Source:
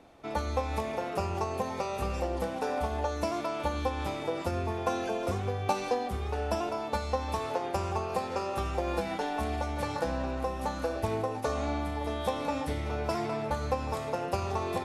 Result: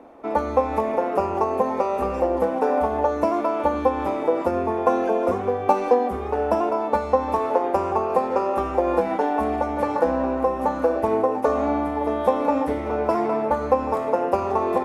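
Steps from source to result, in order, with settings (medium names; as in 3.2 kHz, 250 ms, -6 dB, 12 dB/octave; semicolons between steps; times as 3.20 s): graphic EQ 125/250/500/1000/2000/4000/8000 Hz -9/+11/+9/+9/+3/-7/-4 dB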